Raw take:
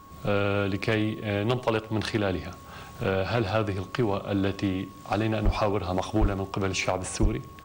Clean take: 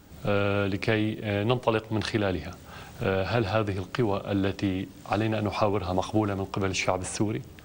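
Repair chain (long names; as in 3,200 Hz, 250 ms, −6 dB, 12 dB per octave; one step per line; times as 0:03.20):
clipped peaks rebuilt −16 dBFS
notch filter 1,100 Hz, Q 30
0:05.44–0:05.56: high-pass filter 140 Hz 24 dB per octave
0:06.20–0:06.32: high-pass filter 140 Hz 24 dB per octave
0:07.21–0:07.33: high-pass filter 140 Hz 24 dB per octave
echo removal 82 ms −20.5 dB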